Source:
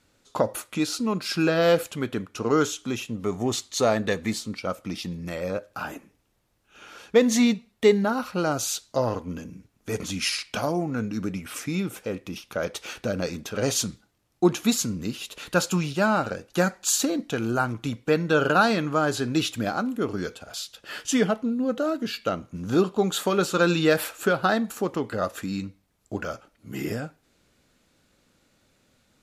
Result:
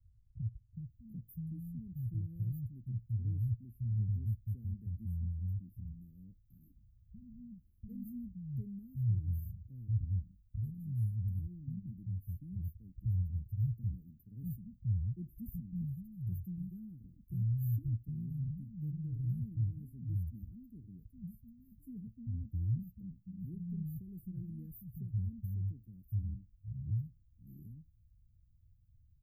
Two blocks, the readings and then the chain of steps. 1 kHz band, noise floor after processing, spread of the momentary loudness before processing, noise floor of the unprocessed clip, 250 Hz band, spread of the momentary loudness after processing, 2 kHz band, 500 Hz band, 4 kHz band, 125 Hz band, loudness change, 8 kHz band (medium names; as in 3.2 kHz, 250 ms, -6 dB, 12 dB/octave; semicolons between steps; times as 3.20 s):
under -40 dB, -67 dBFS, 13 LU, -68 dBFS, -19.0 dB, 17 LU, under -40 dB, under -40 dB, under -40 dB, -1.5 dB, -14.0 dB, under -40 dB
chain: inverse Chebyshev band-stop 570–6700 Hz, stop band 80 dB; bands offset in time lows, highs 740 ms, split 190 Hz; trim +9.5 dB